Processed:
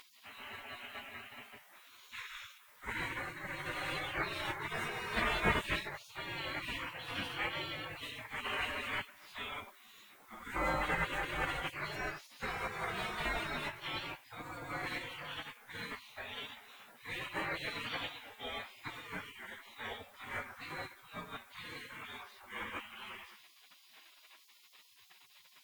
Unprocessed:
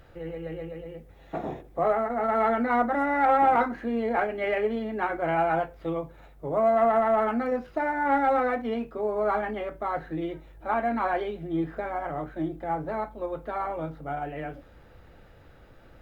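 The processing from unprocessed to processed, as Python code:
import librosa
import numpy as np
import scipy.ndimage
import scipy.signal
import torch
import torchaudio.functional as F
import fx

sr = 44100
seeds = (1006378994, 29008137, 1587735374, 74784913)

y = fx.stretch_vocoder_free(x, sr, factor=1.6)
y = fx.spec_gate(y, sr, threshold_db=-30, keep='weak')
y = F.gain(torch.from_numpy(y), 14.0).numpy()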